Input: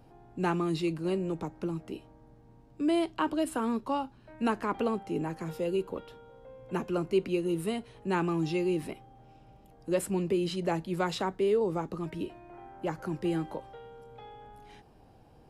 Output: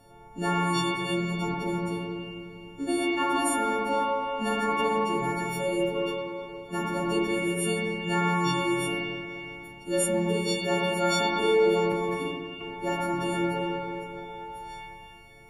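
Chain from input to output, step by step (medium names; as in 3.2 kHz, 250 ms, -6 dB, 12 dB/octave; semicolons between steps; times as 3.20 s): partials quantised in pitch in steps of 4 st; in parallel at +1.5 dB: peak limiter -23.5 dBFS, peak gain reduction 8.5 dB; on the sum: spring tank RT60 2.7 s, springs 38/52 ms, chirp 65 ms, DRR -6 dB; 11.92–12.61 s: three bands expanded up and down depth 70%; trim -6.5 dB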